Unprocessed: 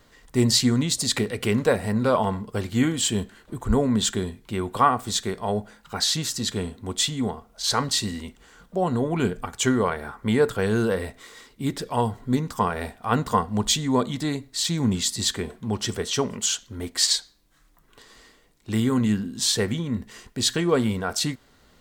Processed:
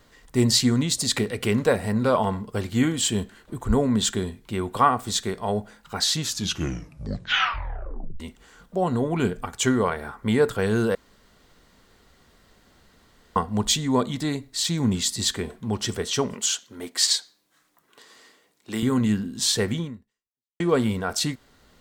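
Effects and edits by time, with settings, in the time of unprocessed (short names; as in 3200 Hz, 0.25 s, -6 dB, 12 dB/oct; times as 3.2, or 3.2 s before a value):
6.17 tape stop 2.03 s
10.95–13.36 room tone
16.34–18.83 Bessel high-pass 280 Hz
19.84–20.6 fade out exponential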